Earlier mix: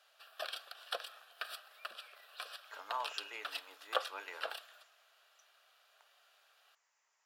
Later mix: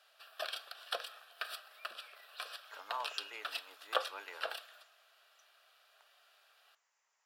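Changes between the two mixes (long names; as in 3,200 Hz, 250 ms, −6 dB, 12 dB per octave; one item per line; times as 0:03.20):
speech: send −7.0 dB
background: send +9.5 dB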